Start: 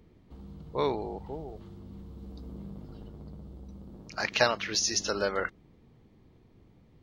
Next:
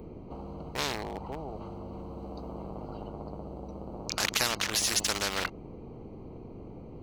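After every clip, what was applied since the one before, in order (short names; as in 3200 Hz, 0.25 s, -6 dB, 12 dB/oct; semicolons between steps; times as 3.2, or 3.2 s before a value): Wiener smoothing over 25 samples; high shelf 6500 Hz +7 dB; spectral compressor 4:1; gain -2.5 dB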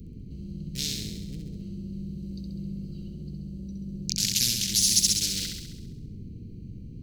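Chebyshev band-stop 170–4800 Hz, order 2; on a send: flutter echo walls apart 11.4 m, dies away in 0.91 s; on the sum: gain +6 dB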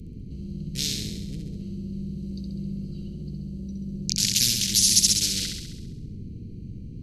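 brick-wall FIR low-pass 13000 Hz; gain +3 dB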